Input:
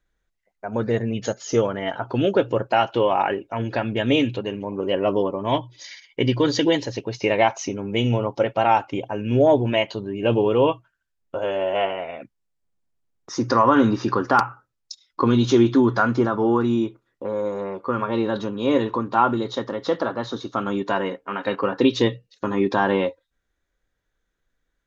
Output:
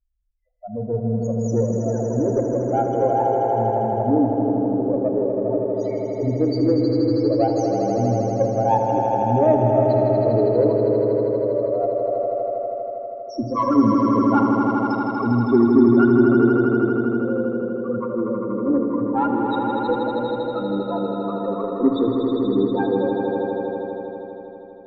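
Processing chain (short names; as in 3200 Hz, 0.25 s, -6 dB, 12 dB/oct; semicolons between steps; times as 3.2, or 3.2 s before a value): low shelf 430 Hz +2.5 dB; loudest bins only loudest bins 4; added harmonics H 3 -24 dB, 6 -36 dB, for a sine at -6 dBFS; on a send: swelling echo 80 ms, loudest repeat 5, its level -6.5 dB; on the sum: FDN reverb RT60 2.3 s, high-frequency decay 0.55×, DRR 9 dB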